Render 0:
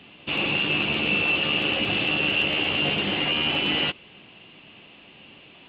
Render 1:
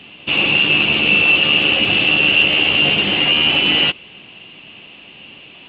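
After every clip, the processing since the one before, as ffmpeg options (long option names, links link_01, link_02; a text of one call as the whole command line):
ffmpeg -i in.wav -af "equalizer=frequency=2800:width_type=o:width=0.54:gain=5.5,volume=5.5dB" out.wav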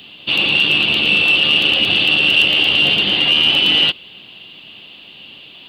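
ffmpeg -i in.wav -af "aexciter=amount=8.2:drive=3.3:freq=3500,volume=-3dB" out.wav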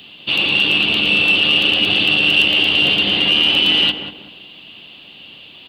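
ffmpeg -i in.wav -filter_complex "[0:a]asplit=2[link_01][link_02];[link_02]adelay=190,lowpass=frequency=1100:poles=1,volume=-5.5dB,asplit=2[link_03][link_04];[link_04]adelay=190,lowpass=frequency=1100:poles=1,volume=0.38,asplit=2[link_05][link_06];[link_06]adelay=190,lowpass=frequency=1100:poles=1,volume=0.38,asplit=2[link_07][link_08];[link_08]adelay=190,lowpass=frequency=1100:poles=1,volume=0.38,asplit=2[link_09][link_10];[link_10]adelay=190,lowpass=frequency=1100:poles=1,volume=0.38[link_11];[link_01][link_03][link_05][link_07][link_09][link_11]amix=inputs=6:normalize=0,volume=-1dB" out.wav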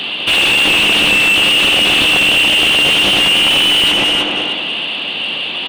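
ffmpeg -i in.wav -filter_complex "[0:a]asplit=2[link_01][link_02];[link_02]adelay=314,lowpass=frequency=2100:poles=1,volume=-8.5dB,asplit=2[link_03][link_04];[link_04]adelay=314,lowpass=frequency=2100:poles=1,volume=0.35,asplit=2[link_05][link_06];[link_06]adelay=314,lowpass=frequency=2100:poles=1,volume=0.35,asplit=2[link_07][link_08];[link_08]adelay=314,lowpass=frequency=2100:poles=1,volume=0.35[link_09];[link_01][link_03][link_05][link_07][link_09]amix=inputs=5:normalize=0,asplit=2[link_10][link_11];[link_11]highpass=frequency=720:poles=1,volume=32dB,asoftclip=type=tanh:threshold=-0.5dB[link_12];[link_10][link_12]amix=inputs=2:normalize=0,lowpass=frequency=1800:poles=1,volume=-6dB" out.wav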